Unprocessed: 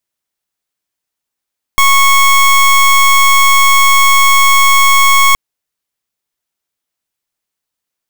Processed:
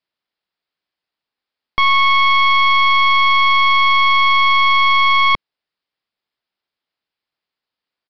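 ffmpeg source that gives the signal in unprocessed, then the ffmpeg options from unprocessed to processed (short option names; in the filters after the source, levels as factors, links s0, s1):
-f lavfi -i "aevalsrc='0.447*(2*lt(mod(1100*t,1),0.23)-1)':d=3.57:s=44100"
-af "lowshelf=f=100:g=-10,asoftclip=type=tanh:threshold=0.355,aresample=11025,aresample=44100"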